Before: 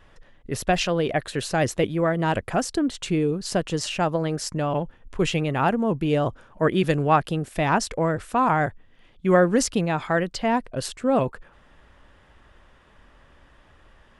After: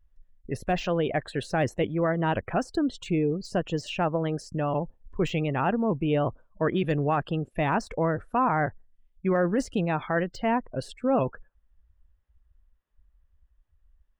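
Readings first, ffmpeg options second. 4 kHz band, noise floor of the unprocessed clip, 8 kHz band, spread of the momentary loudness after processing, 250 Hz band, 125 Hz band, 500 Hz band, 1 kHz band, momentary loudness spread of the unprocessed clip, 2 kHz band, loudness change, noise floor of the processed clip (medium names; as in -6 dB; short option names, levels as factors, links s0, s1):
-8.0 dB, -55 dBFS, -14.5 dB, 6 LU, -3.0 dB, -3.0 dB, -3.5 dB, -4.0 dB, 6 LU, -4.5 dB, -4.0 dB, -68 dBFS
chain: -af "afftdn=nr=30:nf=-38,deesser=0.85,alimiter=limit=0.211:level=0:latency=1:release=14,volume=0.75"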